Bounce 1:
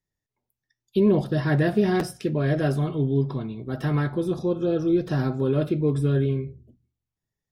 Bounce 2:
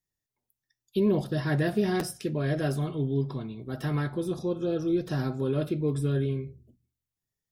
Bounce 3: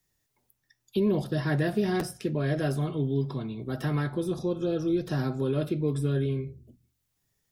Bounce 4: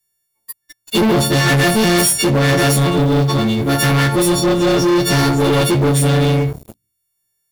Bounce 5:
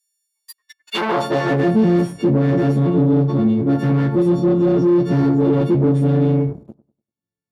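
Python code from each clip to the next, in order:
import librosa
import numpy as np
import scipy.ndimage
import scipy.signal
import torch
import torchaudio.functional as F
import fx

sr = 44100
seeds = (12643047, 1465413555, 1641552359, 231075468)

y1 = fx.high_shelf(x, sr, hz=4700.0, db=9.0)
y1 = F.gain(torch.from_numpy(y1), -5.0).numpy()
y2 = fx.band_squash(y1, sr, depth_pct=40)
y3 = fx.freq_snap(y2, sr, grid_st=4)
y3 = fx.leveller(y3, sr, passes=5)
y3 = F.gain(torch.from_numpy(y3), 3.5).numpy()
y4 = fx.echo_bbd(y3, sr, ms=98, stages=1024, feedback_pct=30, wet_db=-18.0)
y4 = fx.filter_sweep_bandpass(y4, sr, from_hz=6900.0, to_hz=240.0, start_s=0.34, end_s=1.75, q=1.1)
y4 = F.gain(torch.from_numpy(y4), 2.5).numpy()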